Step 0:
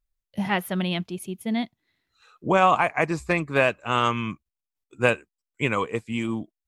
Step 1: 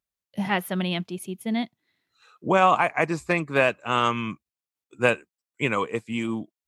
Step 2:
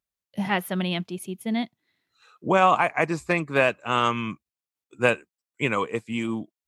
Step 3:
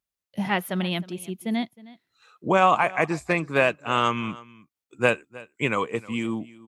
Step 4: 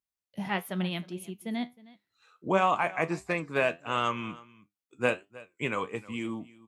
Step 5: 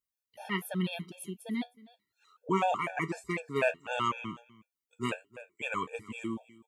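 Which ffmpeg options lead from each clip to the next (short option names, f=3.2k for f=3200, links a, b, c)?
-af "highpass=120"
-af anull
-af "aecho=1:1:313:0.0944"
-af "flanger=delay=9.7:depth=2.7:regen=68:speed=1.5:shape=sinusoidal,volume=-2dB"
-af "crystalizer=i=0.5:c=0,afftfilt=real='re*gt(sin(2*PI*4*pts/sr)*(1-2*mod(floor(b*sr/1024/460),2)),0)':imag='im*gt(sin(2*PI*4*pts/sr)*(1-2*mod(floor(b*sr/1024/460),2)),0)':win_size=1024:overlap=0.75"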